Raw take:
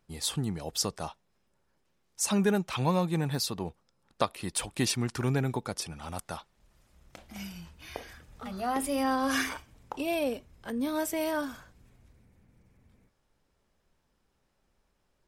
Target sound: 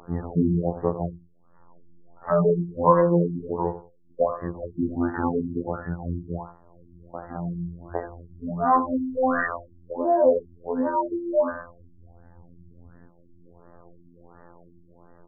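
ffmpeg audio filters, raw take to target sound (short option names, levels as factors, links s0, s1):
-filter_complex "[0:a]acrossover=split=300|6200[s0][s1][s2];[s1]volume=11.9,asoftclip=hard,volume=0.0841[s3];[s0][s3][s2]amix=inputs=3:normalize=0,acompressor=mode=upward:threshold=0.00282:ratio=2.5,asplit=2[s4][s5];[s5]adelay=25,volume=0.596[s6];[s4][s6]amix=inputs=2:normalize=0,afftfilt=real='hypot(re,im)*cos(PI*b)':imag='0':win_size=2048:overlap=0.75,asplit=2[s7][s8];[s8]highpass=f=720:p=1,volume=3.98,asoftclip=type=tanh:threshold=0.299[s9];[s7][s9]amix=inputs=2:normalize=0,lowpass=f=1000:p=1,volume=0.501,aphaser=in_gain=1:out_gain=1:delay=2.1:decay=0.46:speed=0.14:type=sinusoidal,asplit=2[s10][s11];[s11]asoftclip=type=tanh:threshold=0.0447,volume=0.282[s12];[s10][s12]amix=inputs=2:normalize=0,aecho=1:1:87|174:0.237|0.0474,afftfilt=real='re*lt(b*sr/1024,360*pow(2000/360,0.5+0.5*sin(2*PI*1.4*pts/sr)))':imag='im*lt(b*sr/1024,360*pow(2000/360,0.5+0.5*sin(2*PI*1.4*pts/sr)))':win_size=1024:overlap=0.75,volume=2.82"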